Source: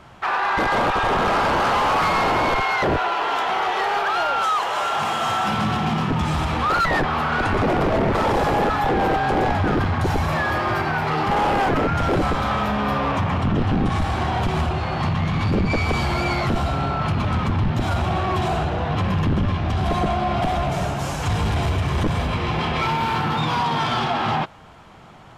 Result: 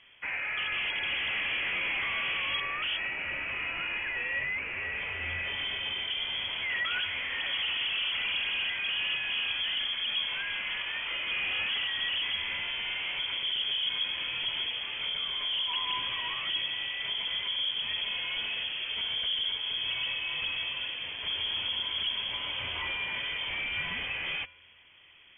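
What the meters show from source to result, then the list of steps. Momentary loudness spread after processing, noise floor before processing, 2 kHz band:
4 LU, −26 dBFS, −5.0 dB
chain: tuned comb filter 460 Hz, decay 0.64 s, mix 70%
voice inversion scrambler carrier 3,300 Hz
level −2.5 dB

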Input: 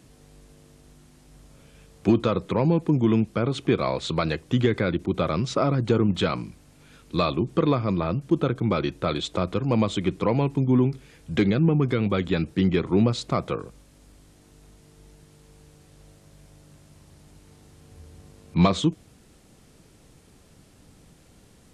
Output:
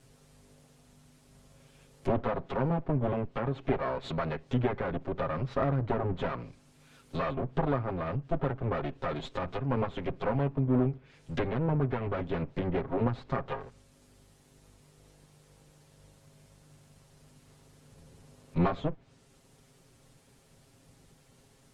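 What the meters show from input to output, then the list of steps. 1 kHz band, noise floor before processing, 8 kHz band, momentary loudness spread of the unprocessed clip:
−4.5 dB, −55 dBFS, below −15 dB, 6 LU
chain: lower of the sound and its delayed copy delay 7.4 ms
treble cut that deepens with the level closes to 1,700 Hz, closed at −23.5 dBFS
parametric band 310 Hz −6 dB 0.24 octaves
level −4.5 dB

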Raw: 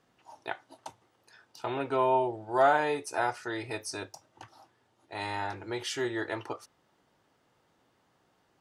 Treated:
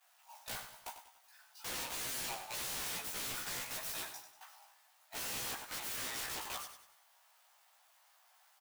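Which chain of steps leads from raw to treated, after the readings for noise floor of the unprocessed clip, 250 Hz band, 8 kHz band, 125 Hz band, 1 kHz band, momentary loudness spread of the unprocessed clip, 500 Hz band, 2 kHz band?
−71 dBFS, −18.0 dB, +5.0 dB, −13.0 dB, −17.0 dB, 19 LU, −22.0 dB, −8.5 dB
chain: converter with a step at zero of −39.5 dBFS
downward expander −32 dBFS
Butterworth high-pass 660 Hz 48 dB per octave
high-shelf EQ 9,700 Hz +11 dB
brickwall limiter −23 dBFS, peak gain reduction 9.5 dB
wrap-around overflow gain 38 dB
double-tracking delay 16 ms −2 dB
repeating echo 96 ms, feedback 41%, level −10 dB

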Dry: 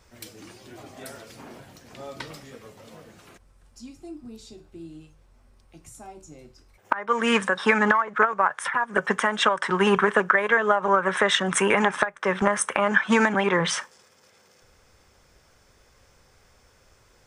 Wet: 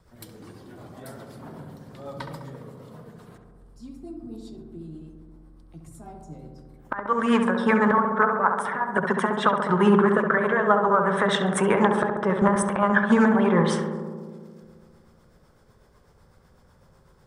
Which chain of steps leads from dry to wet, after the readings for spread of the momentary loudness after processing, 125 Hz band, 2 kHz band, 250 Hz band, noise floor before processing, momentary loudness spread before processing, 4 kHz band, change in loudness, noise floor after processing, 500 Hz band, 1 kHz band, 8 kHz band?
21 LU, +6.0 dB, −3.5 dB, +5.5 dB, −59 dBFS, 20 LU, −6.5 dB, +0.5 dB, −57 dBFS, +1.5 dB, +0.5 dB, −6.5 dB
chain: graphic EQ with 15 bands 160 Hz +9 dB, 1,000 Hz +5 dB, 2,500 Hz −9 dB, 6,300 Hz −9 dB
rotating-speaker cabinet horn 8 Hz
feedback echo with a low-pass in the loop 68 ms, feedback 83%, low-pass 1,700 Hz, level −5 dB

